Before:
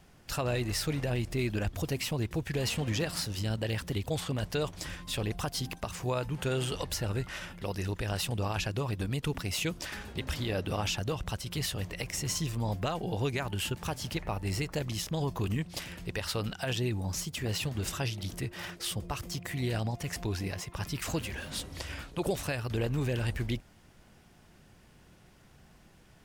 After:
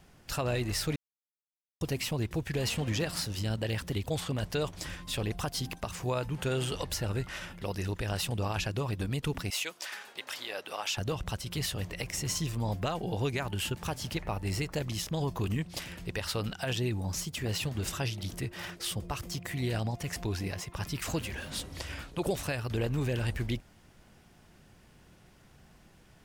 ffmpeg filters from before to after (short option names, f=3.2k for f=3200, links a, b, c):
-filter_complex "[0:a]asettb=1/sr,asplit=3[a][b][c];[a]atrim=end=9.504[d];[b]atrim=start=9.5:end=10.97,asetpts=PTS-STARTPTS,afade=t=in:d=0.004:c=qsin,afade=t=out:st=1.466:d=0.004:c=qsin,highpass=690[e];[c]atrim=start=10.966[f];[d][e]acrossfade=d=0.004:c1=hsin:c2=qsin[g];[g][f]acrossfade=d=0.004:c1=qsin:c2=hsin,asplit=3[h][i][j];[h]atrim=end=0.96,asetpts=PTS-STARTPTS,afade=t=out:st=0.956:d=0.004:c=hsin[k];[i]atrim=start=0.96:end=1.81,asetpts=PTS-STARTPTS,volume=0[l];[j]atrim=start=1.81,asetpts=PTS-STARTPTS,afade=t=in:d=0.004:c=hsin[m];[k][l][m]concat=n=3:v=0:a=1"